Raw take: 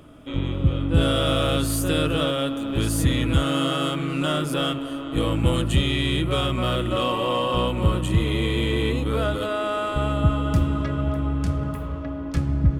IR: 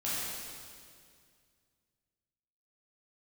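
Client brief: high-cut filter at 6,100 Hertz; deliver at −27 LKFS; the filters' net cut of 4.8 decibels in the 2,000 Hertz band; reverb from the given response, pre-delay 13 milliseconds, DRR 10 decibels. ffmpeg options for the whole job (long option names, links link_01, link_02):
-filter_complex "[0:a]lowpass=6100,equalizer=frequency=2000:width_type=o:gain=-7,asplit=2[link_01][link_02];[1:a]atrim=start_sample=2205,adelay=13[link_03];[link_02][link_03]afir=irnorm=-1:irlink=0,volume=-16.5dB[link_04];[link_01][link_04]amix=inputs=2:normalize=0,volume=-3.5dB"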